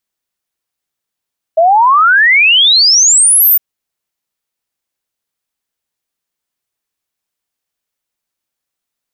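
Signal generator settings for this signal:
exponential sine sweep 630 Hz → 15,000 Hz 2.01 s −4.5 dBFS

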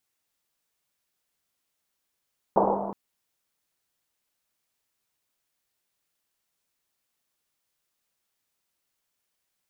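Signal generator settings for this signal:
drum after Risset length 0.37 s, pitch 200 Hz, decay 2.77 s, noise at 670 Hz, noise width 640 Hz, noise 70%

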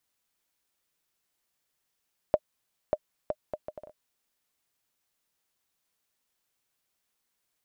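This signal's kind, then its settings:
bouncing ball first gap 0.59 s, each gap 0.63, 610 Hz, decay 50 ms −10 dBFS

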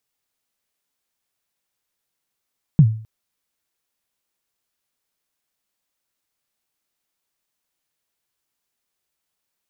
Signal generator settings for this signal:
synth kick length 0.26 s, from 170 Hz, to 110 Hz, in 66 ms, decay 0.45 s, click off, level −4 dB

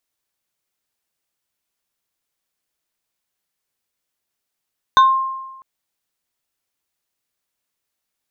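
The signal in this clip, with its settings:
two-operator FM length 0.65 s, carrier 1,060 Hz, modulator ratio 2.43, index 0.63, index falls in 0.28 s exponential, decay 1.13 s, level −5.5 dB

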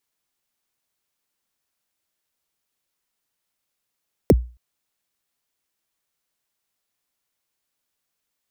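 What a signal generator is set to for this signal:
synth kick length 0.27 s, from 580 Hz, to 60 Hz, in 37 ms, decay 0.34 s, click on, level −6 dB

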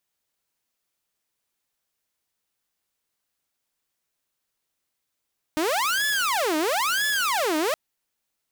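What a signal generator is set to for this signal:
siren wail 305–1,720 Hz 1 per second saw −19 dBFS 2.17 s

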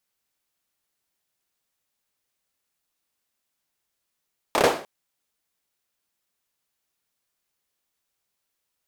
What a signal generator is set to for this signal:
synth clap length 0.30 s, apart 29 ms, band 530 Hz, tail 0.41 s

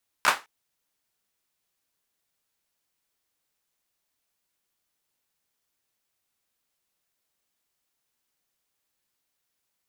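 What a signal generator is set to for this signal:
synth clap length 0.21 s, bursts 3, apart 14 ms, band 1,200 Hz, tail 0.24 s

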